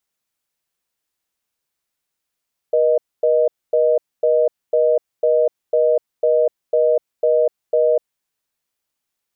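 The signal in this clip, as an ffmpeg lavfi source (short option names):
-f lavfi -i "aevalsrc='0.178*(sin(2*PI*480*t)+sin(2*PI*620*t))*clip(min(mod(t,0.5),0.25-mod(t,0.5))/0.005,0,1)':d=5.32:s=44100"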